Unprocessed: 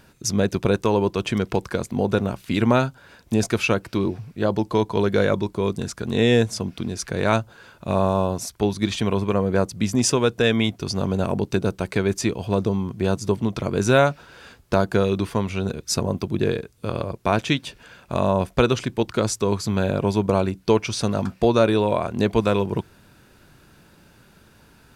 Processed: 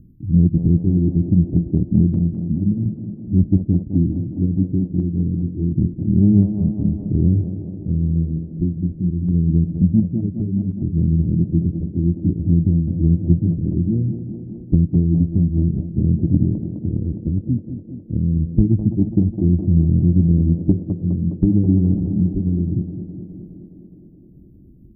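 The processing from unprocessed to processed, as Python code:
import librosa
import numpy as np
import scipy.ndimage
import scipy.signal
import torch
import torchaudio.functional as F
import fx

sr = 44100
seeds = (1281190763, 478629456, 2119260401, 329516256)

p1 = fx.pitch_heads(x, sr, semitones=-2.5)
p2 = fx.env_lowpass_down(p1, sr, base_hz=310.0, full_db=-19.0)
p3 = scipy.signal.sosfilt(scipy.signal.cheby2(4, 70, [1000.0, 7200.0], 'bandstop', fs=sr, output='sos'), p2)
p4 = fx.peak_eq(p3, sr, hz=320.0, db=5.0, octaves=0.29)
p5 = fx.rider(p4, sr, range_db=3, speed_s=0.5)
p6 = p4 + F.gain(torch.from_numpy(p5), 0.0).numpy()
p7 = fx.tremolo_random(p6, sr, seeds[0], hz=1.4, depth_pct=55)
p8 = 10.0 ** (-3.5 / 20.0) * np.tanh(p7 / 10.0 ** (-3.5 / 20.0))
p9 = p8 + fx.echo_tape(p8, sr, ms=207, feedback_pct=84, wet_db=-8.0, lp_hz=1700.0, drive_db=8.0, wow_cents=6, dry=0)
y = F.gain(torch.from_numpy(p9), 5.0).numpy()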